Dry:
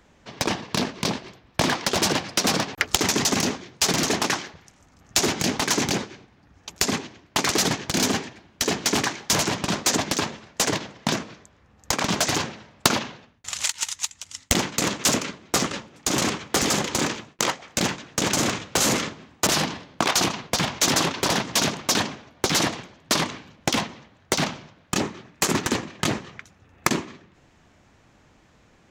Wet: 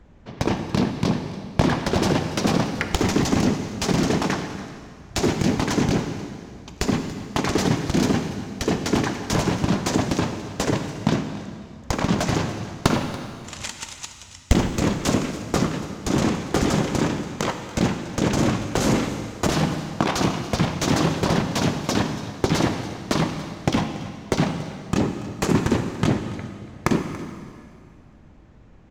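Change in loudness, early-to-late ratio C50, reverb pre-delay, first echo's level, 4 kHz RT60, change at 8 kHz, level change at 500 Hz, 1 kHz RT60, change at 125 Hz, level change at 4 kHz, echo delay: 0.0 dB, 7.5 dB, 18 ms, -17.5 dB, 2.1 s, -8.5 dB, +3.0 dB, 2.1 s, +8.5 dB, -6.0 dB, 284 ms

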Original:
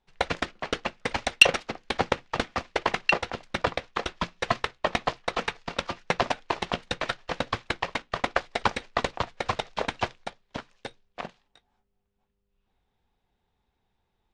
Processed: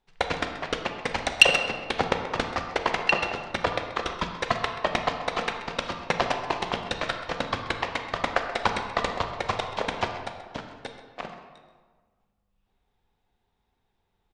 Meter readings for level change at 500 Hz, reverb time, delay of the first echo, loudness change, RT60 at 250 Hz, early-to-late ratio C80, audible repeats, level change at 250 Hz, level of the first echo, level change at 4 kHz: +1.5 dB, 1.5 s, 131 ms, +1.0 dB, 1.6 s, 7.0 dB, 1, +1.0 dB, -14.5 dB, +1.0 dB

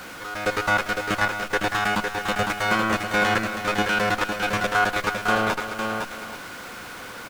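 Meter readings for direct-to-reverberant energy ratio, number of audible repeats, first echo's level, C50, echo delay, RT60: no reverb, 2, -19.0 dB, no reverb, 103 ms, no reverb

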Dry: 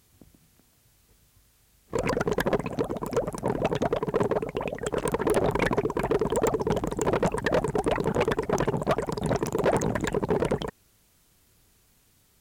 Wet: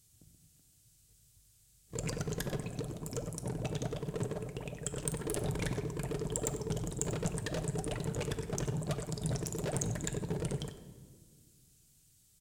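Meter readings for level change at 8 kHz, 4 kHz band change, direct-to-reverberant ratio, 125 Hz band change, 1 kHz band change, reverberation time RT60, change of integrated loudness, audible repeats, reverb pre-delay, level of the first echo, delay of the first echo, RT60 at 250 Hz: +1.0 dB, -6.0 dB, 7.0 dB, -3.5 dB, -17.5 dB, 1.7 s, -10.0 dB, 1, 7 ms, -14.0 dB, 94 ms, 2.6 s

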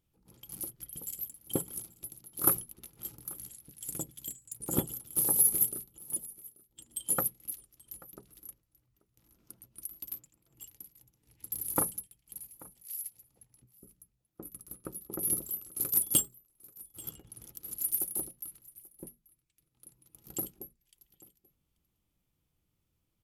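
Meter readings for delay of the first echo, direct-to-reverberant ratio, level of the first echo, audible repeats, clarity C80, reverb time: 835 ms, no reverb, -22.0 dB, 1, no reverb, no reverb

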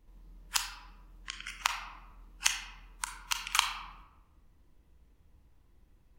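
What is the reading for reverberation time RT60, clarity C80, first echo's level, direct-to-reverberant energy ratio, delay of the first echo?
1.0 s, 8.5 dB, no echo, 4.5 dB, no echo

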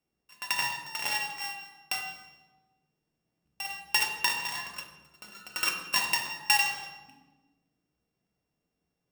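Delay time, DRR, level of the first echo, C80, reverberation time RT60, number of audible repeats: no echo, 2.0 dB, no echo, 9.0 dB, 1.2 s, no echo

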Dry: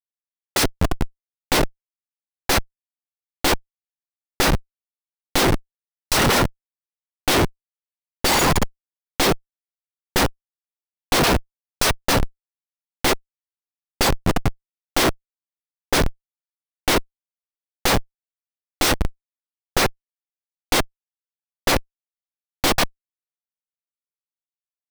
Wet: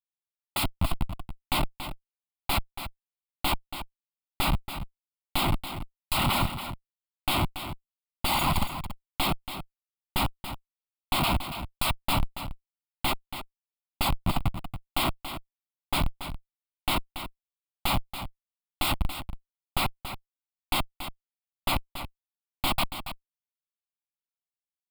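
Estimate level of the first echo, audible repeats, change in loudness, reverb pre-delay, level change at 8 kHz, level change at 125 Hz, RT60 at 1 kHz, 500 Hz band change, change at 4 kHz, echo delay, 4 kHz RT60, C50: -10.5 dB, 1, -9.0 dB, no reverb, -12.5 dB, -5.5 dB, no reverb, -14.5 dB, -7.0 dB, 281 ms, no reverb, no reverb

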